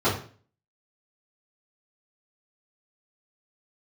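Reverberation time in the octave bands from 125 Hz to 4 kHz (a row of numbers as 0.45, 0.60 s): 0.50, 0.50, 0.45, 0.40, 0.40, 0.40 s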